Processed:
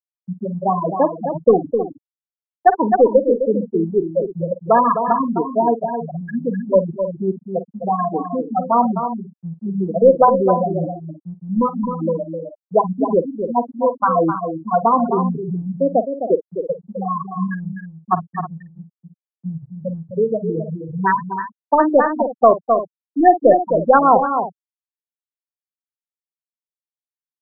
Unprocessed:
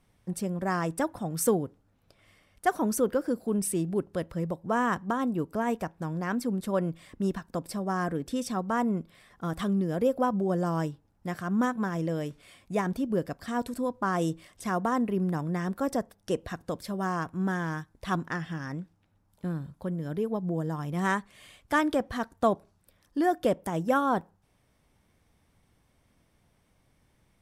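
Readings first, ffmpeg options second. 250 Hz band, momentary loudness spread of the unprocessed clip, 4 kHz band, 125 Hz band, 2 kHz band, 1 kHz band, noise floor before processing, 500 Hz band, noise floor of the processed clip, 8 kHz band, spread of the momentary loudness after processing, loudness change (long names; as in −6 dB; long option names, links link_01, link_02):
+7.5 dB, 9 LU, below −35 dB, +5.5 dB, +3.5 dB, +14.5 dB, −69 dBFS, +14.0 dB, below −85 dBFS, below −40 dB, 15 LU, +11.5 dB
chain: -filter_complex "[0:a]aeval=exprs='if(lt(val(0),0),0.708*val(0),val(0))':channel_layout=same,bandreject=frequency=50:width_type=h:width=6,bandreject=frequency=100:width_type=h:width=6,bandreject=frequency=150:width_type=h:width=6,bandreject=frequency=200:width_type=h:width=6,bandreject=frequency=250:width_type=h:width=6,bandreject=frequency=300:width_type=h:width=6,bandreject=frequency=350:width_type=h:width=6,afftfilt=real='re*gte(hypot(re,im),0.158)':imag='im*gte(hypot(re,im),0.158)':win_size=1024:overlap=0.75,equalizer=frequency=780:width_type=o:width=2.5:gain=13,acrossover=split=150[link_01][link_02];[link_01]acompressor=threshold=-23dB:ratio=4[link_03];[link_03][link_02]amix=inputs=2:normalize=0,crystalizer=i=1.5:c=0,aecho=1:1:49|259|315:0.188|0.398|0.178,alimiter=level_in=6dB:limit=-1dB:release=50:level=0:latency=1,afftfilt=real='re*lt(b*sr/1024,1000*pow(7400/1000,0.5+0.5*sin(2*PI*4.9*pts/sr)))':imag='im*lt(b*sr/1024,1000*pow(7400/1000,0.5+0.5*sin(2*PI*4.9*pts/sr)))':win_size=1024:overlap=0.75"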